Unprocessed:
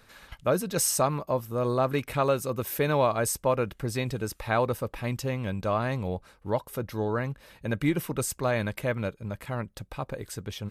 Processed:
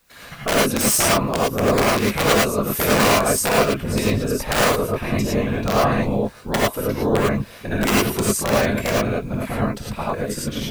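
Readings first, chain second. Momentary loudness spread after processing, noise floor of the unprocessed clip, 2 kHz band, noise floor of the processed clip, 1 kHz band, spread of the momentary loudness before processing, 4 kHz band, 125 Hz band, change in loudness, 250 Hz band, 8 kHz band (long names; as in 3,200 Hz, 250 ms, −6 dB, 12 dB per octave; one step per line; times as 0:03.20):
9 LU, −60 dBFS, +12.5 dB, −41 dBFS, +9.0 dB, 11 LU, +15.0 dB, +6.5 dB, +9.5 dB, +10.5 dB, +10.0 dB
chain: noise gate −54 dBFS, range −15 dB
in parallel at −1 dB: downward compressor 16 to 1, threshold −32 dBFS, peak gain reduction 14 dB
on the sum: random phases in short frames
background noise white −65 dBFS
wrap-around overflow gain 14.5 dB
reverb whose tail is shaped and stops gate 130 ms rising, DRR −5.5 dB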